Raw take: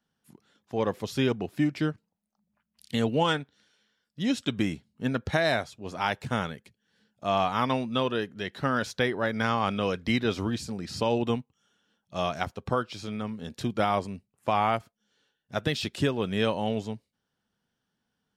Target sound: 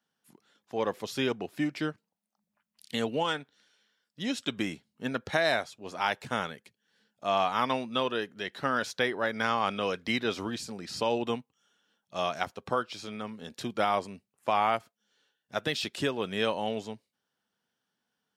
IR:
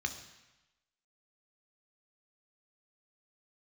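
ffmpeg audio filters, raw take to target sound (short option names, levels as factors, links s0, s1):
-filter_complex "[0:a]highpass=f=390:p=1,asettb=1/sr,asplit=3[s0][s1][s2];[s0]atrim=end=3.044[s3];[s1]atrim=start=3.04:end=4.39,asetpts=PTS-STARTPTS,afade=t=in:d=0.004:c=qsin,afade=t=out:st=1.346:d=0.004:c=qsin,acompressor=threshold=0.0447:ratio=2[s4];[s2]atrim=start=4.386[s5];[s3][s4]acrossfade=d=0.004:c1=hsin:c2=qsin[s6];[s6][s5]acrossfade=d=0.004:c1=qsin:c2=hsin"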